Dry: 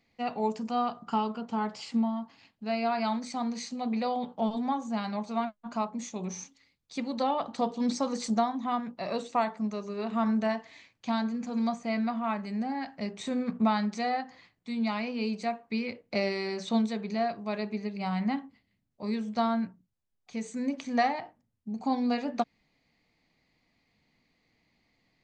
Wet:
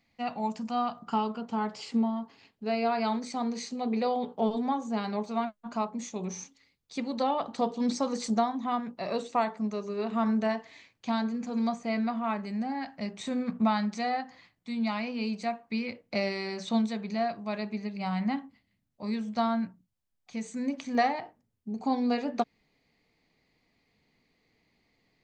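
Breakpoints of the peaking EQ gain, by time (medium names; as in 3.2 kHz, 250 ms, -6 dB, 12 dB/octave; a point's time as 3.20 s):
peaking EQ 420 Hz 0.35 oct
-11 dB
from 0.98 s +1 dB
from 1.77 s +11 dB
from 5.26 s +3.5 dB
from 12.51 s -4.5 dB
from 20.95 s +6.5 dB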